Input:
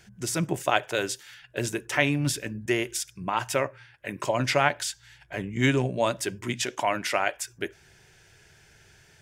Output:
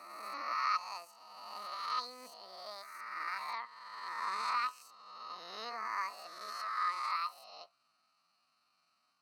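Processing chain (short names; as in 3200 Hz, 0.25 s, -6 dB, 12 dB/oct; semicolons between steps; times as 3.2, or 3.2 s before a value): spectral swells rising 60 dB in 1.67 s; vowel filter a; pitch shift +9.5 st; gain -6.5 dB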